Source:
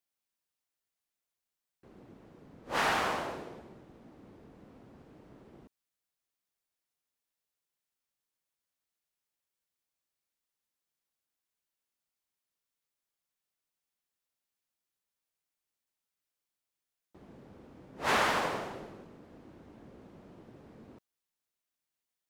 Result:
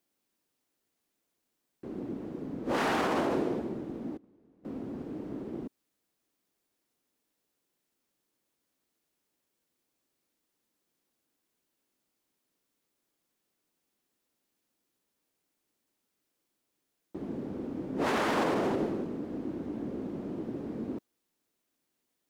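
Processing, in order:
0:04.17–0:04.65: noise gate −49 dBFS, range −25 dB
parametric band 290 Hz +13.5 dB 1.7 octaves
brickwall limiter −27 dBFS, peak gain reduction 14.5 dB
level +6.5 dB

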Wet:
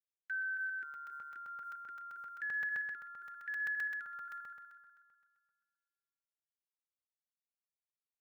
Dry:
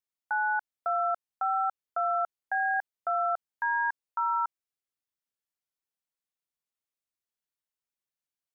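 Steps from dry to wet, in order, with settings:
low-pass that shuts in the quiet parts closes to 1,400 Hz, open at −27.5 dBFS
noise gate with hold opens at −27 dBFS
notch comb filter 510 Hz
wrong playback speed 24 fps film run at 25 fps
feedback echo with a high-pass in the loop 123 ms, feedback 64%, high-pass 490 Hz, level −8 dB
brickwall limiter −29.5 dBFS, peak gain reduction 10.5 dB
Chebyshev band-stop filter 410–1,500 Hz, order 5
first difference
speech leveller within 3 dB 2 s
low-shelf EQ 500 Hz +12 dB
regular buffer underruns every 0.13 s, samples 128, zero, from 0:00.94
level +13 dB

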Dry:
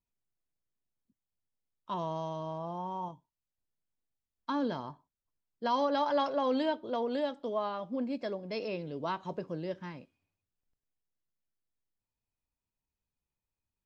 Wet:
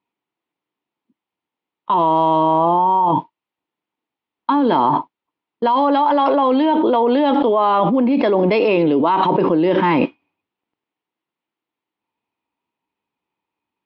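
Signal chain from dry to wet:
downward expander −46 dBFS
loudspeaker in its box 270–3,200 Hz, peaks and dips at 310 Hz +6 dB, 590 Hz −5 dB, 920 Hz +6 dB, 1,600 Hz −6 dB
envelope flattener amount 100%
level +8 dB

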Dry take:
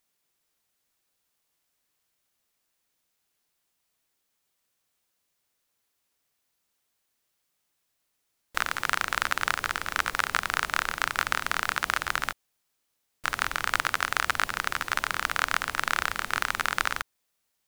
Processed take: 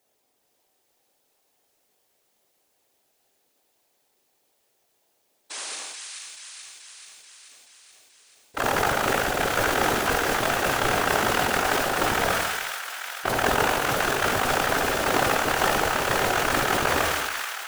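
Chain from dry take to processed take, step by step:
noise gate −39 dBFS, range −27 dB
flat-topped bell 510 Hz +11.5 dB
compressor whose output falls as the input rises −29 dBFS, ratio −0.5
power curve on the samples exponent 0.7
sound drawn into the spectrogram noise, 0:05.50–0:05.76, 350–9,900 Hz −35 dBFS
random phases in short frames
on a send: delay with a high-pass on its return 432 ms, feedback 66%, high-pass 1,500 Hz, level −4 dB
on the sum: reverb whose tail is shaped and stops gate 450 ms falling, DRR 5.5 dB
level that may fall only so fast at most 25 dB per second

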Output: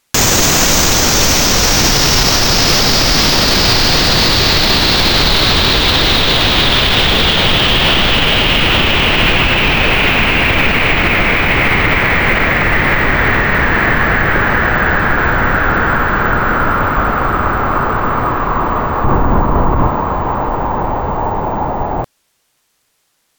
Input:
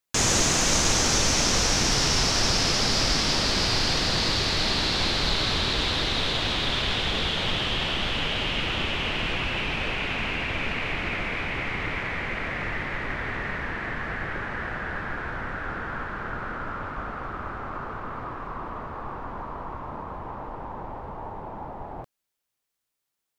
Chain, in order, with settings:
0:19.04–0:19.88: low-shelf EQ 480 Hz +10.5 dB
bad sample-rate conversion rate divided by 2×, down none, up hold
boost into a limiter +21 dB
level −1 dB

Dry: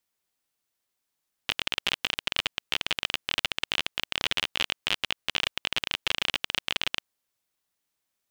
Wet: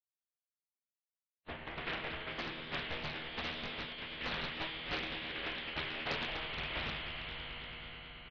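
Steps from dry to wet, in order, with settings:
spectral dynamics exaggerated over time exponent 3
parametric band 400 Hz +13.5 dB 0.3 octaves
resonators tuned to a chord C3 minor, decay 0.7 s
echo that builds up and dies away 107 ms, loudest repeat 5, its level −13.5 dB
phase-vocoder pitch shift with formants kept −8.5 semitones
parametric band 1,100 Hz +12.5 dB 0.89 octaves
voice inversion scrambler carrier 3,200 Hz
pitch-shifted copies added −5 semitones −7 dB, +5 semitones −14 dB
highs frequency-modulated by the lows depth 0.79 ms
level +13.5 dB

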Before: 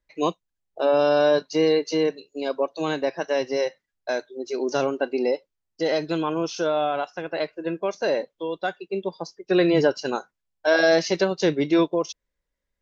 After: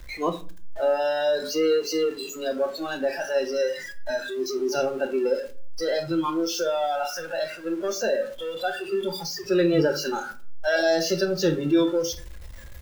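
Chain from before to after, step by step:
converter with a step at zero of −22.5 dBFS
noise reduction from a noise print of the clip's start 16 dB
rectangular room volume 240 cubic metres, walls furnished, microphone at 0.85 metres
level −4.5 dB

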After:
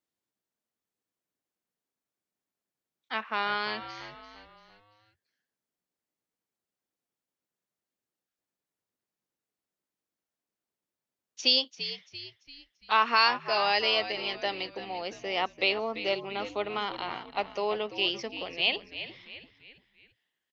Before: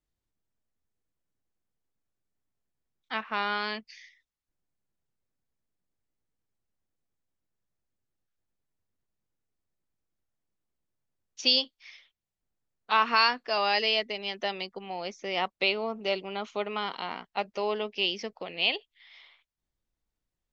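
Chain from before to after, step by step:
high-pass filter 220 Hz
echo with shifted repeats 340 ms, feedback 43%, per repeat −77 Hz, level −12 dB

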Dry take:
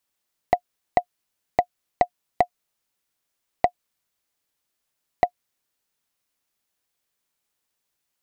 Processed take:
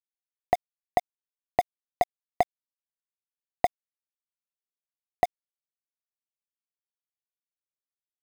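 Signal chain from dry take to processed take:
centre clipping without the shift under −27.5 dBFS
level −3.5 dB

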